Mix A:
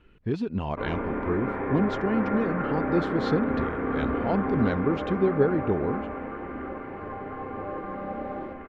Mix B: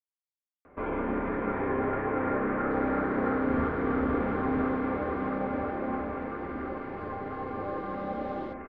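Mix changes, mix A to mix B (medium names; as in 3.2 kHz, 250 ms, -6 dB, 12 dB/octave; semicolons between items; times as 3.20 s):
speech: muted; second sound: add resonant high shelf 2.7 kHz +8 dB, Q 1.5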